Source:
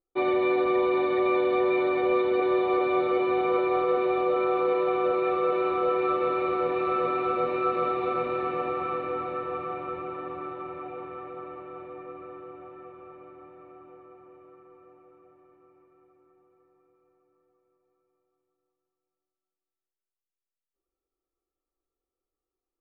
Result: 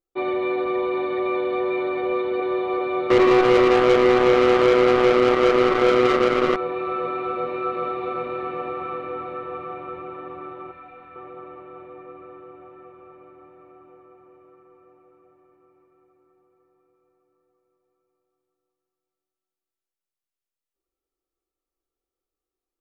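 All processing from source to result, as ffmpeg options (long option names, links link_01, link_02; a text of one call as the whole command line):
ffmpeg -i in.wav -filter_complex "[0:a]asettb=1/sr,asplit=3[link_01][link_02][link_03];[link_01]atrim=end=3.104[link_04];[link_02]atrim=start=3.1:end=6.56,asetpts=PTS-STARTPTS,afade=type=in:duration=0.004:curve=qsin,afade=type=out:start_time=3.456:duration=0.004:curve=qsin,equalizer=frequency=380:width=1:gain=9.5,acrusher=bits=2:mix=0:aa=0.5[link_05];[link_03]atrim=start=6.556[link_06];[link_04][link_05]acrossfade=duration=0.004:curve1=hsin:curve2=qsin[link_07];[link_07][link_06]acrossfade=duration=0.004:curve1=qsin:curve2=hsin,asettb=1/sr,asplit=3[link_08][link_09][link_10];[link_08]atrim=end=10.714[link_11];[link_09]atrim=start=10.71:end=11.16,asetpts=PTS-STARTPTS,afade=type=in:duration=0.004:curve=qsin,afade=type=out:start_time=0.446:duration=0.004:curve=qsin,equalizer=frequency=420:width_type=o:width=2.1:gain=-11.5,aecho=1:1:3.9:0.56,atrim=end_sample=19845[link_12];[link_10]atrim=start=11.156[link_13];[link_11][link_12]acrossfade=duration=0.004:curve1=hsin:curve2=qsin[link_14];[link_14][link_13]acrossfade=duration=0.004:curve1=qsin:curve2=hsin" out.wav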